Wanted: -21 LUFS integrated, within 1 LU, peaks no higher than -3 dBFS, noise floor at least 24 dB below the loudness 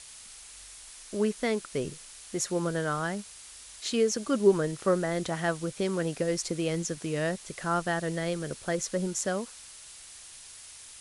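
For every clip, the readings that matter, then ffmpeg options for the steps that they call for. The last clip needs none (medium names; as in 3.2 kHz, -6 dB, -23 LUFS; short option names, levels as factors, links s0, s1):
noise floor -48 dBFS; noise floor target -54 dBFS; loudness -30.0 LUFS; peak level -10.5 dBFS; loudness target -21.0 LUFS
-> -af "afftdn=nr=6:nf=-48"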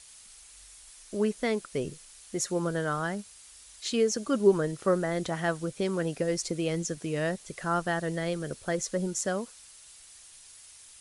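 noise floor -52 dBFS; noise floor target -54 dBFS
-> -af "afftdn=nr=6:nf=-52"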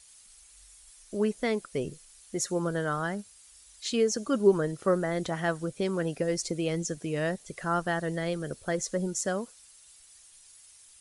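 noise floor -56 dBFS; loudness -30.0 LUFS; peak level -10.5 dBFS; loudness target -21.0 LUFS
-> -af "volume=2.82,alimiter=limit=0.708:level=0:latency=1"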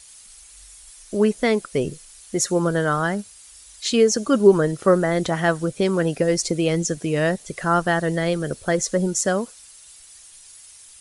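loudness -21.0 LUFS; peak level -3.0 dBFS; noise floor -47 dBFS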